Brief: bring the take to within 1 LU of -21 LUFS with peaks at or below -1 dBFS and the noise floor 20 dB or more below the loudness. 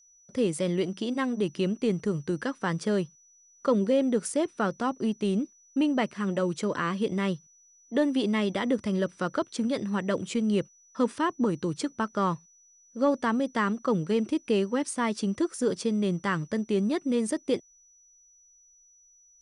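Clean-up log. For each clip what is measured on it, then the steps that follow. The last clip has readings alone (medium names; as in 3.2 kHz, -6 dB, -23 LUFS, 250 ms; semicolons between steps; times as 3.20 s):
steady tone 5.9 kHz; tone level -57 dBFS; loudness -28.5 LUFS; peak level -14.5 dBFS; loudness target -21.0 LUFS
-> band-stop 5.9 kHz, Q 30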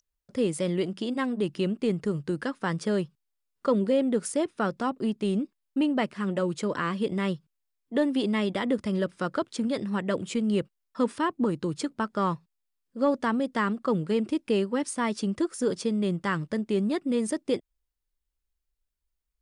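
steady tone not found; loudness -28.5 LUFS; peak level -14.5 dBFS; loudness target -21.0 LUFS
-> trim +7.5 dB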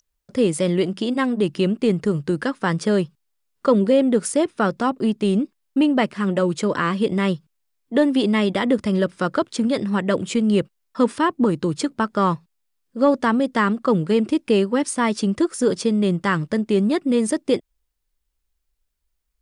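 loudness -21.0 LUFS; peak level -7.0 dBFS; noise floor -74 dBFS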